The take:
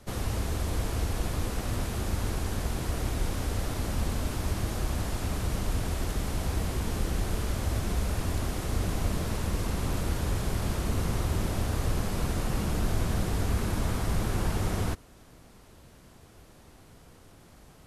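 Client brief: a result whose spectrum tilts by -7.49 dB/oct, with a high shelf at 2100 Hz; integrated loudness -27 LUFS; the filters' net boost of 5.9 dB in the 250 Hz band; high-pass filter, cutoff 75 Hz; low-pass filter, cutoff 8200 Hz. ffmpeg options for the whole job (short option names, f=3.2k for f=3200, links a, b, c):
-af "highpass=75,lowpass=8.2k,equalizer=f=250:t=o:g=8,highshelf=f=2.1k:g=-9,volume=4dB"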